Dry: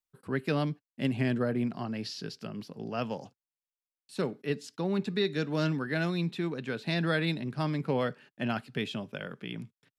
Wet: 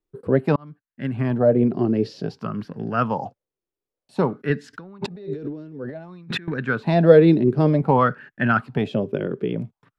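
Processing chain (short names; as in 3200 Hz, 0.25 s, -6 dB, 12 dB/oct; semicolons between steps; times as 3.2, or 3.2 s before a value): tilt -3 dB/oct; 0.56–2.38 fade in equal-power; 4.73–6.48 negative-ratio compressor -42 dBFS, ratio -1; LFO bell 0.54 Hz 360–1700 Hz +18 dB; gain +3.5 dB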